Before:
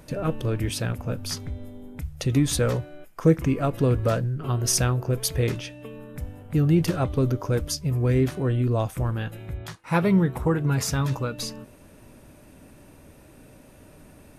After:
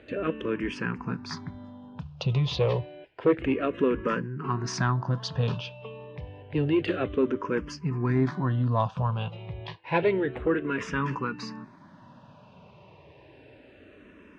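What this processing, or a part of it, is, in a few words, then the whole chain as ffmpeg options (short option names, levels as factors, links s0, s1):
barber-pole phaser into a guitar amplifier: -filter_complex "[0:a]asplit=2[s0][s1];[s1]afreqshift=-0.29[s2];[s0][s2]amix=inputs=2:normalize=1,asoftclip=type=tanh:threshold=0.2,highpass=77,equalizer=f=79:t=q:w=4:g=-5,equalizer=f=180:t=q:w=4:g=4,equalizer=f=400:t=q:w=4:g=4,equalizer=f=1000:t=q:w=4:g=10,equalizer=f=1700:t=q:w=4:g=5,equalizer=f=2800:t=q:w=4:g=6,lowpass=f=4400:w=0.5412,lowpass=f=4400:w=1.3066"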